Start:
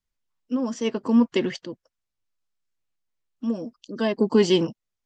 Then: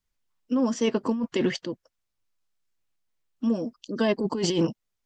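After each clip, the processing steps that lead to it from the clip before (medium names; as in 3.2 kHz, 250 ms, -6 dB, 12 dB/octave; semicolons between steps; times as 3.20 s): compressor with a negative ratio -23 dBFS, ratio -1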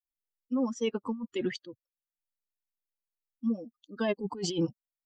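expander on every frequency bin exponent 2; trim -3 dB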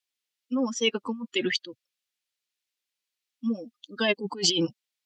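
frequency weighting D; trim +3.5 dB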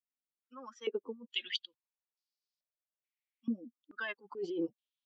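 step-sequenced band-pass 2.3 Hz 270–4900 Hz; trim -2 dB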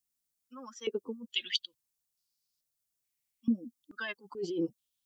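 tone controls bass +11 dB, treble +13 dB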